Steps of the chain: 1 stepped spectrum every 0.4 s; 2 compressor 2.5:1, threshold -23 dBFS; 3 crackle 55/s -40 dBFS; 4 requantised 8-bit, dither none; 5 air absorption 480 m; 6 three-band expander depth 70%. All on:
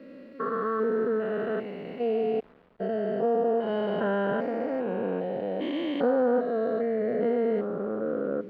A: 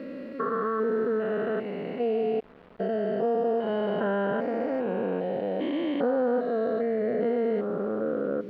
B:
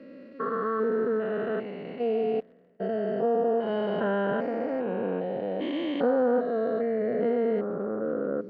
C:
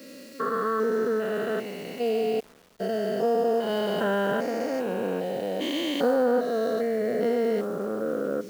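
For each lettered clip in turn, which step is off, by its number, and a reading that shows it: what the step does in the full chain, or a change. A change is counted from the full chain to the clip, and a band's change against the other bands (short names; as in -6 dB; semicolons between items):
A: 6, crest factor change -3.0 dB; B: 4, distortion -27 dB; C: 5, 2 kHz band +3.0 dB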